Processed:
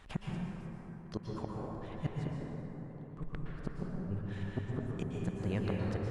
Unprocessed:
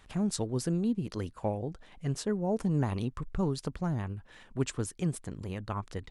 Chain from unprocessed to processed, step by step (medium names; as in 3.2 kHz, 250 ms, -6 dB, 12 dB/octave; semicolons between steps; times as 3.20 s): treble shelf 4.8 kHz -9 dB; inverted gate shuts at -25 dBFS, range -33 dB; plate-style reverb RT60 4.1 s, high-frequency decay 0.35×, pre-delay 105 ms, DRR -3 dB; trim +2 dB